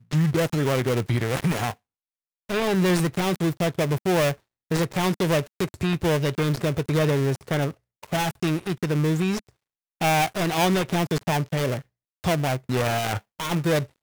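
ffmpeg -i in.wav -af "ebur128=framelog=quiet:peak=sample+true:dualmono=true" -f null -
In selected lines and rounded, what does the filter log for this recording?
Integrated loudness:
  I:         -21.4 LUFS
  Threshold: -31.6 LUFS
Loudness range:
  LRA:         1.4 LU
  Threshold: -41.7 LUFS
  LRA low:   -22.5 LUFS
  LRA high:  -21.1 LUFS
Sample peak:
  Peak:       -9.4 dBFS
True peak:
  Peak:       -8.4 dBFS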